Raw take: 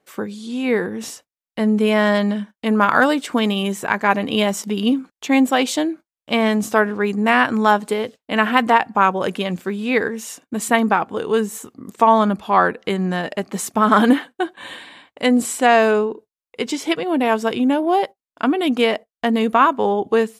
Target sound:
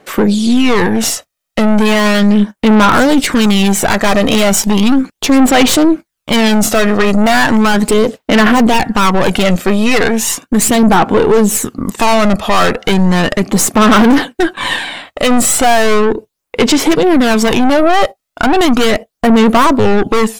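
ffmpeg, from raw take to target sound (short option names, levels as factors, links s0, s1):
-af "aeval=exprs='(tanh(15.8*val(0)+0.45)-tanh(0.45))/15.8':c=same,aphaser=in_gain=1:out_gain=1:delay=1.6:decay=0.44:speed=0.36:type=sinusoidal,alimiter=level_in=10:limit=0.891:release=50:level=0:latency=1,volume=0.891"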